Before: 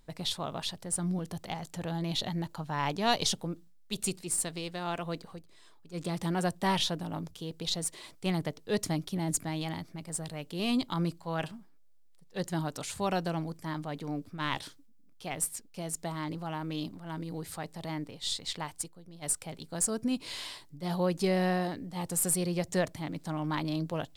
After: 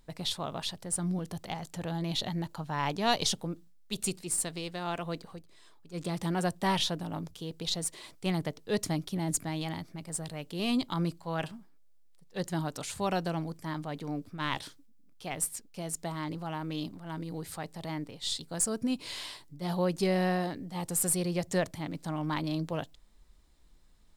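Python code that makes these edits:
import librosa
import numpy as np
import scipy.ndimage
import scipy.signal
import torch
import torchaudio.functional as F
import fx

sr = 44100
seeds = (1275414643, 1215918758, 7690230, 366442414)

y = fx.edit(x, sr, fx.cut(start_s=18.39, length_s=1.21), tone=tone)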